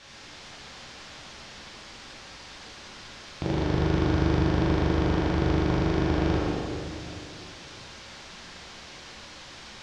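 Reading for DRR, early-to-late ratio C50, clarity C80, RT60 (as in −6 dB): −7.5 dB, −3.0 dB, −1.5 dB, 2.5 s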